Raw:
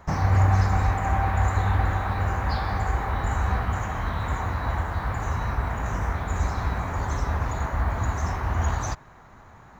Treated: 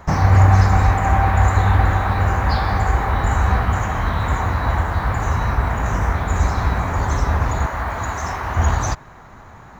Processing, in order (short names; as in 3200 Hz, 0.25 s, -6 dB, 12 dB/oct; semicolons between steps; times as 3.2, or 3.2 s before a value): 7.66–8.57 low shelf 320 Hz -10 dB; gain +7.5 dB